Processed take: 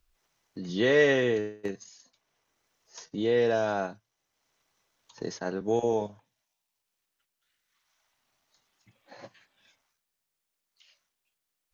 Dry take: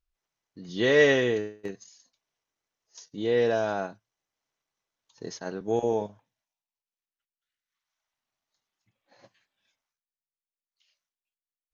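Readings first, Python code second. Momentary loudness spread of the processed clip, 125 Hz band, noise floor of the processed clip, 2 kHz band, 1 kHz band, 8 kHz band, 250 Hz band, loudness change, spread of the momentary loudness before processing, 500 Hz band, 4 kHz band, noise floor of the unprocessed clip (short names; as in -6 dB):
18 LU, 0.0 dB, -84 dBFS, -2.0 dB, 0.0 dB, n/a, 0.0 dB, -2.0 dB, 20 LU, -1.0 dB, -2.0 dB, under -85 dBFS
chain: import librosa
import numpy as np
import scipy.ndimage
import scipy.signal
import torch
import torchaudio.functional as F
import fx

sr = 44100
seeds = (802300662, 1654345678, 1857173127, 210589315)

y = fx.band_squash(x, sr, depth_pct=40)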